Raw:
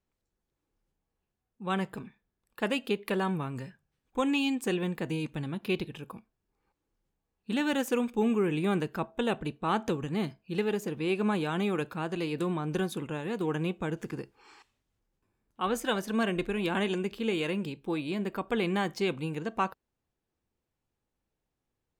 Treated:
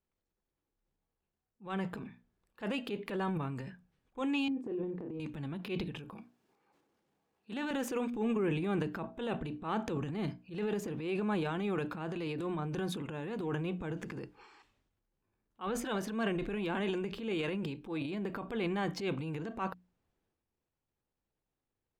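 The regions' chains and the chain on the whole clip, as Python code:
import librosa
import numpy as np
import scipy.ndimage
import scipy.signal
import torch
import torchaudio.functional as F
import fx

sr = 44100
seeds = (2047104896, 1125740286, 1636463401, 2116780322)

y = fx.chain(x, sr, fx.bandpass_q(hz=340.0, q=1.8),
    fx.doubler(ms=33.0, db=-9.0), at=(4.48, 5.2))
y = fx.chain(y, sr, fx.highpass(hz=170.0, slope=12),
    fx.peak_eq(hz=760.0, db=3.0, octaves=0.26),
    fx.band_squash(depth_pct=40), at=(6.15, 7.71))
y = fx.lowpass(y, sr, hz=3500.0, slope=6)
y = fx.hum_notches(y, sr, base_hz=60, count=5)
y = fx.transient(y, sr, attack_db=-8, sustain_db=8)
y = y * librosa.db_to_amplitude(-4.0)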